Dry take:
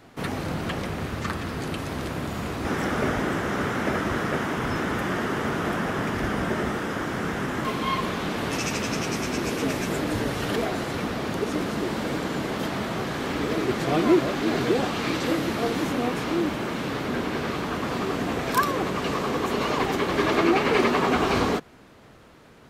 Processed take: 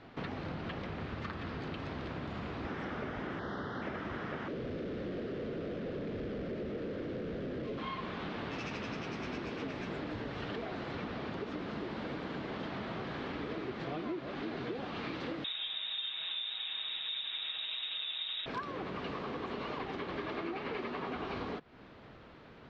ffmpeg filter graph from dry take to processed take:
-filter_complex "[0:a]asettb=1/sr,asplit=3[a][b][c];[a]atrim=end=3.394[d];[b]atrim=start=3.39:end=3.82,asetpts=PTS-STARTPTS,afade=t=in:d=0.004:c=qsin,afade=t=out:st=0.426:d=0.004:c=qsin,asuperstop=centerf=2400:order=4:qfactor=1.9,highshelf=f=7.5k:t=q:w=1.5:g=-13[e];[c]atrim=start=3.816[f];[d][e]acrossfade=d=0.004:c1=hsin:c2=qsin[g];[g][f]acrossfade=d=0.004:c1=qsin:c2=hsin,asettb=1/sr,asplit=3[h][i][j];[h]atrim=end=4.484[k];[i]atrim=start=4.48:end=7.78,asetpts=PTS-STARTPTS,afade=t=in:d=0.004:c=qsin,afade=t=out:st=3.296:d=0.004:c=qsin,volume=33.5dB,asoftclip=hard,volume=-33.5dB,lowshelf=f=670:t=q:w=3:g=8.5[l];[j]atrim=start=7.776[m];[k][l]acrossfade=d=0.004:c1=hsin:c2=qsin[n];[n][m]acrossfade=d=0.004:c1=qsin:c2=hsin,asettb=1/sr,asplit=3[o][p][q];[o]atrim=end=15.444[r];[p]atrim=start=15.44:end=18.46,asetpts=PTS-STARTPTS,afade=t=in:d=0.004:c=qsin,afade=t=out:st=3.016:d=0.004:c=qsin,lowshelf=f=250:g=11,lowpass=f=3.3k:t=q:w=0.5098,lowpass=f=3.3k:t=q:w=0.6013,lowpass=f=3.3k:t=q:w=0.9,lowpass=f=3.3k:t=q:w=2.563,afreqshift=-3900,aecho=1:1:6.3:0.39,atrim=end_sample=133182[s];[q]atrim=start=18.456[t];[r][s]acrossfade=d=0.004:c1=hsin:c2=qsin[u];[u][t]acrossfade=d=0.004:c1=qsin:c2=hsin,lowpass=f=4.3k:w=0.5412,lowpass=f=4.3k:w=1.3066,acompressor=threshold=-34dB:ratio=6,volume=-3dB"

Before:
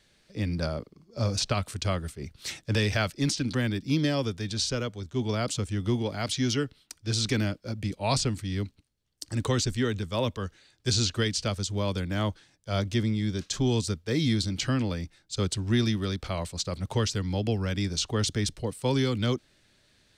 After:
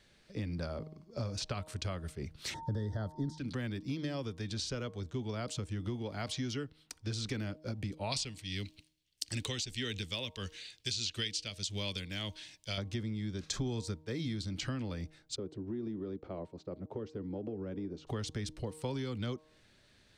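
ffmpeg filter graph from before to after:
-filter_complex "[0:a]asettb=1/sr,asplit=3[a][b][c];[a]atrim=end=2.544[d];[b]atrim=start=2.54:end=3.38,asetpts=PTS-STARTPTS,afade=t=in:d=0.004:c=qsin,afade=t=out:st=0.836:d=0.004:c=qsin,asuperstop=centerf=2500:order=12:qfactor=2.1,tiltshelf=f=860:g=8.5,aeval=exprs='val(0)+0.00794*sin(2*PI*910*n/s)':c=same[e];[c]atrim=start=3.376[f];[d][e]acrossfade=d=0.004:c1=hsin:c2=qsin[g];[g][f]acrossfade=d=0.004:c1=qsin:c2=hsin,asettb=1/sr,asplit=3[h][i][j];[h]atrim=end=8.124[k];[i]atrim=start=8.12:end=12.78,asetpts=PTS-STARTPTS,afade=t=in:d=0.004:c=qsin,afade=t=out:st=4.656:d=0.004:c=qsin,highshelf=f=1.8k:t=q:w=1.5:g=12.5,tremolo=f=1.6:d=0.62[l];[j]atrim=start=12.776[m];[k][l]acrossfade=d=0.004:c1=hsin:c2=qsin[n];[n][m]acrossfade=d=0.004:c1=qsin:c2=hsin,asettb=1/sr,asplit=3[o][p][q];[o]atrim=end=13.434[r];[p]atrim=start=13.43:end=14.05,asetpts=PTS-STARTPTS,afade=t=in:d=0.004:c=qsin,afade=t=out:st=0.616:d=0.004:c=qsin,bandreject=f=2.9k:w=8.5,acontrast=79[s];[q]atrim=start=14.046[t];[r][s]acrossfade=d=0.004:c1=hsin:c2=qsin[u];[u][t]acrossfade=d=0.004:c1=qsin:c2=hsin,asettb=1/sr,asplit=3[v][w][x];[v]atrim=end=15.364[y];[w]atrim=start=15.36:end=18.07,asetpts=PTS-STARTPTS,afade=t=in:d=0.004:c=qsin,afade=t=out:st=2.706:d=0.004:c=qsin,bandpass=f=350:t=q:w=1.8,acompressor=threshold=-33dB:ratio=3:attack=3.2:release=140:knee=1:detection=peak[z];[x]atrim=start=18.066[aa];[y][z]acrossfade=d=0.004:c1=hsin:c2=qsin[ab];[ab][aa]acrossfade=d=0.004:c1=qsin:c2=hsin,highshelf=f=4.8k:g=-6,bandreject=f=155.5:t=h:w=4,bandreject=f=311:t=h:w=4,bandreject=f=466.5:t=h:w=4,bandreject=f=622:t=h:w=4,bandreject=f=777.5:t=h:w=4,bandreject=f=933:t=h:w=4,bandreject=f=1.0885k:t=h:w=4,acompressor=threshold=-35dB:ratio=5"

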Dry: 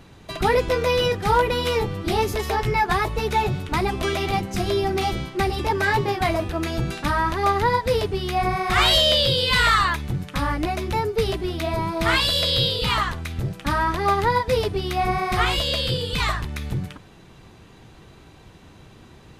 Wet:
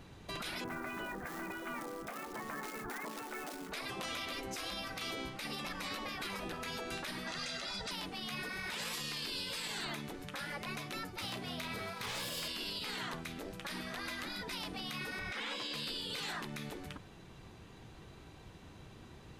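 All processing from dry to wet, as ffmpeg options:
-filter_complex "[0:a]asettb=1/sr,asplit=3[a][b][c];[a]atrim=end=0.644[d];[b]atrim=start=0.64:end=3.72,asetpts=PTS-STARTPTS,afade=t=in:d=0.004:c=qsin,afade=t=out:st=3.076:d=0.004:c=qsin,lowpass=f=1.7k:w=0.5412,lowpass=f=1.7k:w=1.3066,asubboost=boost=10.5:cutoff=150,acrusher=bits=8:mode=log:mix=0:aa=0.000001[e];[c]atrim=start=3.716[f];[d][e]acrossfade=d=0.004:c1=hsin:c2=qsin[g];[g][f]acrossfade=d=0.004:c1=qsin:c2=hsin,asettb=1/sr,asplit=3[h][i][j];[h]atrim=end=7.274[k];[i]atrim=start=7.27:end=7.91,asetpts=PTS-STARTPTS,afade=t=in:d=0.004:c=qsin,afade=t=out:st=0.636:d=0.004:c=qsin,lowpass=f=7.9k:w=0.5412,lowpass=f=7.9k:w=1.3066,highshelf=f=3.6k:g=9,aecho=1:1:1.5:0.8,atrim=end_sample=28224[l];[j]atrim=start=7.906[m];[k][l]acrossfade=d=0.004:c1=hsin:c2=qsin[n];[n][m]acrossfade=d=0.004:c1=qsin:c2=hsin,asettb=1/sr,asplit=3[o][p][q];[o]atrim=end=11.214[r];[p]atrim=start=11.21:end=12.48,asetpts=PTS-STARTPTS,afade=t=in:d=0.004:c=qsin,afade=t=out:st=1.266:d=0.004:c=qsin,highpass=f=140:w=0.5412,highpass=f=140:w=1.3066,asoftclip=type=hard:threshold=-20.5dB,asplit=2[s][t];[t]adelay=33,volume=-9.5dB[u];[s][u]amix=inputs=2:normalize=0,atrim=end_sample=56007[v];[q]atrim=start=12.476[w];[r][v]acrossfade=d=0.004:c1=hsin:c2=qsin[x];[x][w]acrossfade=d=0.004:c1=qsin:c2=hsin,asettb=1/sr,asplit=3[y][z][aa];[y]atrim=end=15.194[ab];[z]atrim=start=15.19:end=15.74,asetpts=PTS-STARTPTS,afade=t=in:d=0.004:c=qsin,afade=t=out:st=0.546:d=0.004:c=qsin,bandreject=f=4.4k:w=10,acrossover=split=7800[ac][ad];[ad]acompressor=threshold=-59dB:ratio=4:attack=1:release=60[ae];[ac][ae]amix=inputs=2:normalize=0,bass=f=250:g=9,treble=f=4k:g=-3[af];[aa]atrim=start=15.736[ag];[ab][af]acrossfade=d=0.004:c1=hsin:c2=qsin[ah];[ah][ag]acrossfade=d=0.004:c1=qsin:c2=hsin,afftfilt=real='re*lt(hypot(re,im),0.158)':imag='im*lt(hypot(re,im),0.158)':win_size=1024:overlap=0.75,alimiter=level_in=0.5dB:limit=-24dB:level=0:latency=1:release=36,volume=-0.5dB,volume=-6.5dB"

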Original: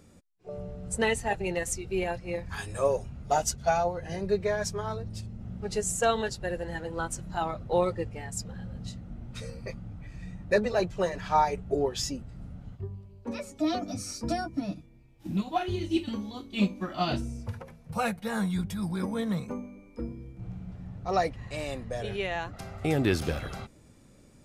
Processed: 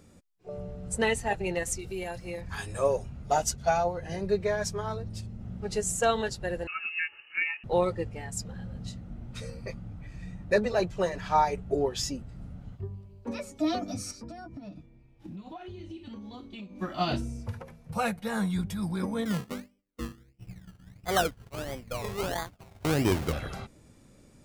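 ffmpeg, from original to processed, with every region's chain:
-filter_complex "[0:a]asettb=1/sr,asplit=3[a][b][c];[a]atrim=end=1.794[d];[b]atrim=start=1.79:end=2.41,asetpts=PTS-STARTPTS,afade=t=in:d=0.004:c=qsin,afade=t=out:st=0.616:d=0.004:c=qsin,bandreject=f=2.5k:w=23,acompressor=threshold=-34dB:ratio=2.5:attack=3.2:release=140:knee=1:detection=peak,aemphasis=mode=production:type=50kf[e];[c]atrim=start=2.406[f];[d][e]acrossfade=d=0.004:c1=hsin:c2=qsin[g];[g][f]acrossfade=d=0.004:c1=qsin:c2=hsin,asettb=1/sr,asplit=3[h][i][j];[h]atrim=end=6.674[k];[i]atrim=start=6.67:end=7.64,asetpts=PTS-STARTPTS,afade=t=in:d=0.004:c=qsin,afade=t=out:st=0.966:d=0.004:c=qsin,highpass=f=280:w=0.5412,highpass=f=280:w=1.3066,aecho=1:1:2.2:0.45,atrim=end_sample=42777,lowpass=f=2.6k:t=q:w=0.5098,lowpass=f=2.6k:t=q:w=0.6013,lowpass=f=2.6k:t=q:w=0.9,lowpass=f=2.6k:t=q:w=2.563,afreqshift=-3100[l];[j]atrim=start=7.636[m];[k][l]acrossfade=d=0.004:c1=hsin:c2=qsin[n];[n][m]acrossfade=d=0.004:c1=qsin:c2=hsin,asettb=1/sr,asplit=3[o][p][q];[o]atrim=end=14.114[r];[p]atrim=start=14.11:end=16.79,asetpts=PTS-STARTPTS,afade=t=in:d=0.004:c=qsin,afade=t=out:st=2.676:d=0.004:c=qsin,acompressor=threshold=-38dB:ratio=16:attack=3.2:release=140:knee=1:detection=peak,aemphasis=mode=reproduction:type=50kf[s];[q]atrim=start=16.786[t];[r][s]acrossfade=d=0.004:c1=hsin:c2=qsin[u];[u][t]acrossfade=d=0.004:c1=qsin:c2=hsin,asettb=1/sr,asplit=3[v][w][x];[v]atrim=end=19.254[y];[w]atrim=start=19.25:end=23.33,asetpts=PTS-STARTPTS,afade=t=in:d=0.004:c=qsin,afade=t=out:st=4.076:d=0.004:c=qsin,agate=range=-33dB:threshold=-33dB:ratio=3:release=100:detection=peak,acrusher=samples=23:mix=1:aa=0.000001:lfo=1:lforange=13.8:lforate=1.5[z];[x]atrim=start=23.326[aa];[y][z]acrossfade=d=0.004:c1=hsin:c2=qsin[ab];[ab][aa]acrossfade=d=0.004:c1=qsin:c2=hsin"

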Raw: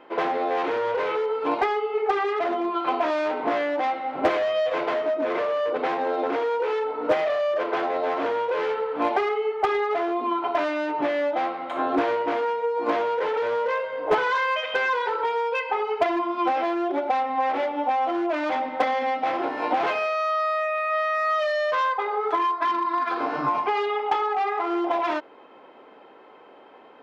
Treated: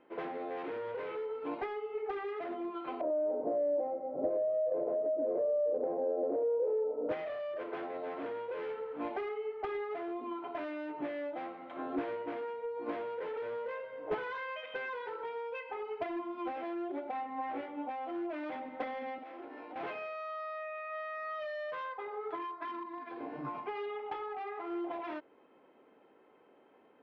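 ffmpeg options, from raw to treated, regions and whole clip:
-filter_complex "[0:a]asettb=1/sr,asplit=3[a][b][c];[a]atrim=end=3.014[d];[b]atrim=start=3.01:end=7.09,asetpts=PTS-STARTPTS,afade=t=in:d=0.004:c=qsin,afade=t=out:st=4.076:d=0.004:c=qsin,lowpass=f=570:t=q:w=6,acompressor=threshold=-15dB:ratio=3:attack=3.2:release=140:knee=1:detection=peak[e];[c]atrim=start=7.086[f];[d][e]acrossfade=d=0.004:c1=hsin:c2=qsin[g];[g][f]acrossfade=d=0.004:c1=qsin:c2=hsin,asettb=1/sr,asplit=3[h][i][j];[h]atrim=end=17.114[k];[i]atrim=start=17.11:end=17.88,asetpts=PTS-STARTPTS,afade=t=in:d=0.004:c=qsin,afade=t=out:st=0.766:d=0.004:c=qsin,highshelf=f=4.4k:g=-8,asplit=2[l][m];[m]adelay=18,volume=-3.5dB[n];[l][n]amix=inputs=2:normalize=0,atrim=end_sample=33957[o];[j]atrim=start=17.876[p];[k][o]acrossfade=d=0.004:c1=hsin:c2=qsin[q];[q][p]acrossfade=d=0.004:c1=qsin:c2=hsin,asettb=1/sr,asplit=3[r][s][t];[r]atrim=end=19.184[u];[s]atrim=start=19.18:end=19.76,asetpts=PTS-STARTPTS,afade=t=in:d=0.004:c=qsin,afade=t=out:st=0.576:d=0.004:c=qsin,highpass=f=230:w=0.5412,highpass=f=230:w=1.3066,acompressor=threshold=-29dB:ratio=6:attack=3.2:release=140:knee=1:detection=peak[v];[t]atrim=start=19.756[w];[u][v]acrossfade=d=0.004:c1=hsin:c2=qsin[x];[x][w]acrossfade=d=0.004:c1=qsin:c2=hsin,asettb=1/sr,asplit=3[y][z][aa];[y]atrim=end=22.834[ab];[z]atrim=start=22.83:end=23.45,asetpts=PTS-STARTPTS,afade=t=in:d=0.004:c=qsin,afade=t=out:st=0.616:d=0.004:c=qsin,lowpass=f=2.9k:p=1,equalizer=f=1.3k:t=o:w=0.3:g=-14[ac];[aa]atrim=start=23.446[ad];[ab][ac]acrossfade=d=0.004:c1=hsin:c2=qsin[ae];[ae][ad]acrossfade=d=0.004:c1=qsin:c2=hsin,lowpass=2.2k,equalizer=f=970:t=o:w=2.2:g=-9.5,volume=-8dB"

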